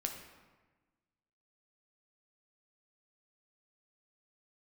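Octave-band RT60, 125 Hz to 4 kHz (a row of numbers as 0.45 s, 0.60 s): 1.6 s, 1.6 s, 1.3 s, 1.3 s, 1.2 s, 0.85 s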